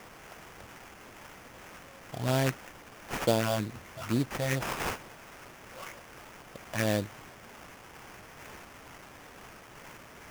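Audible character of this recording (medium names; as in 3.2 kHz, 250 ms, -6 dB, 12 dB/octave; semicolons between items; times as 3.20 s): a quantiser's noise floor 8-bit, dither triangular; phasing stages 4, 2.2 Hz, lowest notch 340–3200 Hz; aliases and images of a low sample rate 4.1 kHz, jitter 20%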